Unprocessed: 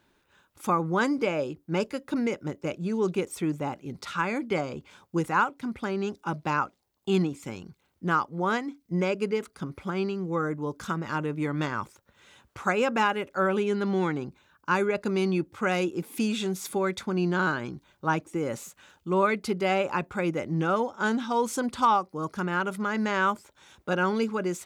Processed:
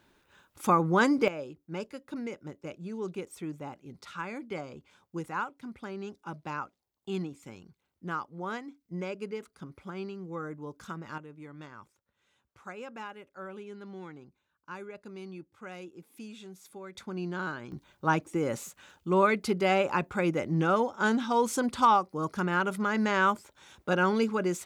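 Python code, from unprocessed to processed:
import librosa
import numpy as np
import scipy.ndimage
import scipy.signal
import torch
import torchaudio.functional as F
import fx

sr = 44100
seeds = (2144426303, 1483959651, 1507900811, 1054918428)

y = fx.gain(x, sr, db=fx.steps((0.0, 1.5), (1.28, -9.5), (11.18, -17.5), (16.95, -9.0), (17.72, 0.0)))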